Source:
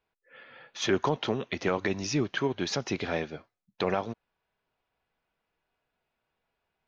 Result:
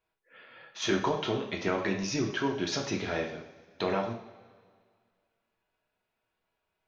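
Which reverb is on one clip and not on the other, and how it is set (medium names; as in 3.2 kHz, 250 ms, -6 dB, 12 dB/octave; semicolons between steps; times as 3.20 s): two-slope reverb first 0.52 s, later 2 s, from -17 dB, DRR 0.5 dB; trim -3.5 dB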